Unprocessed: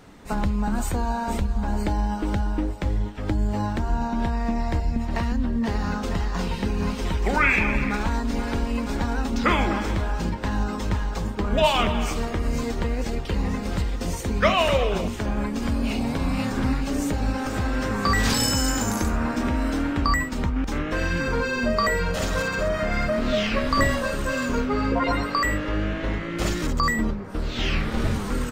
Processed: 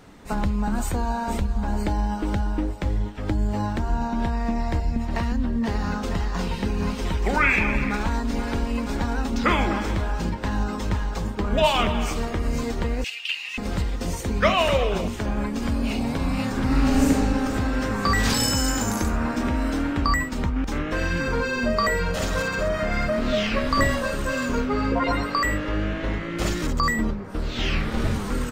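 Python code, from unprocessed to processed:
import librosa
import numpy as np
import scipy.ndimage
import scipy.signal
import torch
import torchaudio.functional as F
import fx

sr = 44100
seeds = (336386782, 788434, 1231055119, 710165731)

y = fx.highpass_res(x, sr, hz=2700.0, q=9.1, at=(13.04, 13.58))
y = fx.reverb_throw(y, sr, start_s=16.65, length_s=0.45, rt60_s=2.4, drr_db=-5.0)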